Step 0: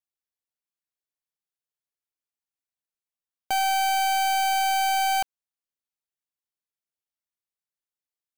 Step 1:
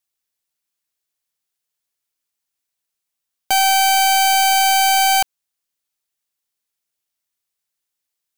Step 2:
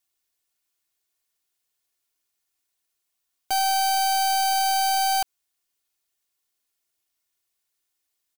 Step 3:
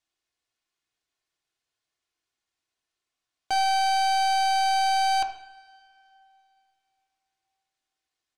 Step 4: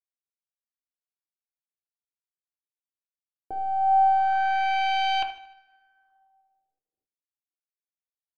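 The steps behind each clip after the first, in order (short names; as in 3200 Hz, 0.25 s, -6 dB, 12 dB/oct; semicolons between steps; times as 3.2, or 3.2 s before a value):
high shelf 2200 Hz +7 dB; gain +6.5 dB
comb 2.8 ms, depth 50%; limiter -18.5 dBFS, peak gain reduction 11.5 dB; gain +1 dB
air absorption 85 m; reverb, pre-delay 3 ms, DRR 4.5 dB
G.711 law mismatch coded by A; LFO low-pass sine 0.24 Hz 380–2900 Hz; feedback echo 76 ms, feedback 51%, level -17.5 dB; gain -1.5 dB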